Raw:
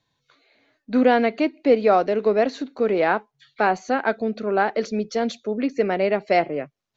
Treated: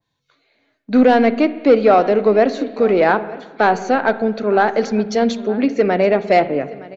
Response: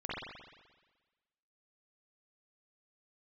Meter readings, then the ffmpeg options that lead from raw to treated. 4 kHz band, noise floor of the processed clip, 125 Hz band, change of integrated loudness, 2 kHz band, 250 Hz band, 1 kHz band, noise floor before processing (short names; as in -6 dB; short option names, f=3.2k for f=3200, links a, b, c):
+4.5 dB, -73 dBFS, +7.0 dB, +6.0 dB, +4.5 dB, +6.5 dB, +5.5 dB, -77 dBFS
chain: -filter_complex "[0:a]aecho=1:1:916:0.0944,agate=range=-8dB:threshold=-45dB:ratio=16:detection=peak,acontrast=80,asplit=2[a][b];[1:a]atrim=start_sample=2205,lowshelf=f=260:g=10[c];[b][c]afir=irnorm=-1:irlink=0,volume=-18dB[d];[a][d]amix=inputs=2:normalize=0,adynamicequalizer=threshold=0.0447:dfrequency=2200:dqfactor=0.7:tfrequency=2200:tqfactor=0.7:attack=5:release=100:ratio=0.375:range=2:mode=cutabove:tftype=highshelf,volume=-1dB"